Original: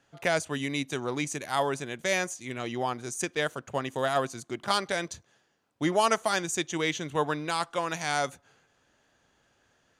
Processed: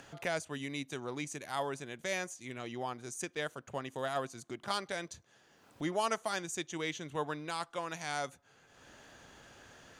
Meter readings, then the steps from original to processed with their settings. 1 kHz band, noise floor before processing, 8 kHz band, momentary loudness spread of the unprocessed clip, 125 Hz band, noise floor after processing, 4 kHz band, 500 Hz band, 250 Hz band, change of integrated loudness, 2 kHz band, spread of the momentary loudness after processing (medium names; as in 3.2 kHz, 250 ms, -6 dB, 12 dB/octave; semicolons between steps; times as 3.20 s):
-8.5 dB, -69 dBFS, -8.0 dB, 7 LU, -8.0 dB, -66 dBFS, -8.5 dB, -8.5 dB, -8.5 dB, -8.5 dB, -8.5 dB, 19 LU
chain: upward compressor, threshold -30 dBFS; trim -8.5 dB